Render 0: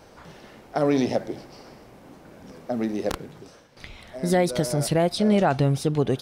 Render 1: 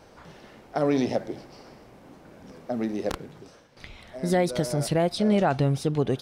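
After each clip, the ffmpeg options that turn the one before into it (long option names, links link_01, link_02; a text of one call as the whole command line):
ffmpeg -i in.wav -af "highshelf=frequency=8700:gain=-4.5,volume=-2dB" out.wav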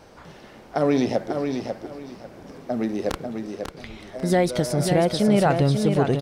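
ffmpeg -i in.wav -af "aecho=1:1:544|1088|1632:0.501|0.125|0.0313,volume=3dB" out.wav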